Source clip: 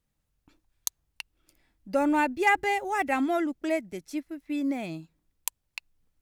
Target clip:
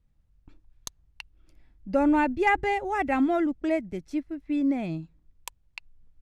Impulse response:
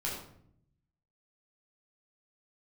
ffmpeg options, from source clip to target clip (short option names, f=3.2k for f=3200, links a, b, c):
-af "aemphasis=mode=reproduction:type=bsi"